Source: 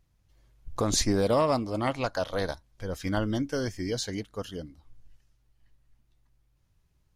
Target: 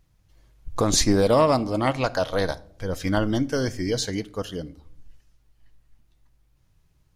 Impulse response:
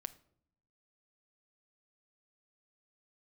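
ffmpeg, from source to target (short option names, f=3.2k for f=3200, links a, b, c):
-filter_complex "[0:a]asplit=2[a][b];[1:a]atrim=start_sample=2205[c];[b][c]afir=irnorm=-1:irlink=0,volume=10dB[d];[a][d]amix=inputs=2:normalize=0,volume=-4.5dB"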